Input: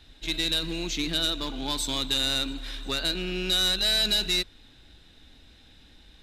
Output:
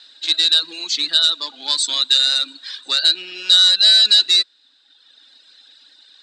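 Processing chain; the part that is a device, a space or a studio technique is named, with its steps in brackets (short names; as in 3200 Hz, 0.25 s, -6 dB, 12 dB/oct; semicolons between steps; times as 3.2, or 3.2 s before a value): 1.89–2.7 steep high-pass 210 Hz; phone speaker on a table (speaker cabinet 350–8600 Hz, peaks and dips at 750 Hz -5 dB, 2200 Hz -5 dB, 4600 Hz +9 dB, 8000 Hz +9 dB); reverb removal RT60 1.3 s; fifteen-band EQ 400 Hz -9 dB, 1600 Hz +6 dB, 4000 Hz +8 dB; gain +3.5 dB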